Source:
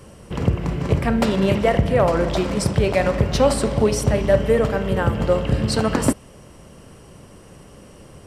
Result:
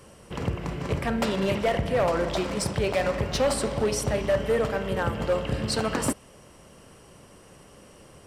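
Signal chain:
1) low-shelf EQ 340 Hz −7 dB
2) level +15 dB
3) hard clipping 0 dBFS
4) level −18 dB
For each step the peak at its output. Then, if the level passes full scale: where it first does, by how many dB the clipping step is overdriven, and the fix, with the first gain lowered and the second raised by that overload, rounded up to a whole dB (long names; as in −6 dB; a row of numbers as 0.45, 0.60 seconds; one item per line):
−6.5, +8.5, 0.0, −18.0 dBFS
step 2, 8.5 dB
step 2 +6 dB, step 4 −9 dB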